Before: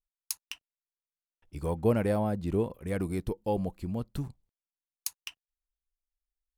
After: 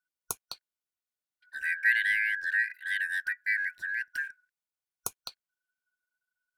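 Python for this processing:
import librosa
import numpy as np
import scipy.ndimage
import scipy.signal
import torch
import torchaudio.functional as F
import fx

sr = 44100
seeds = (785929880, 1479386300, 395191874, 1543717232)

y = fx.band_shuffle(x, sr, order='4123')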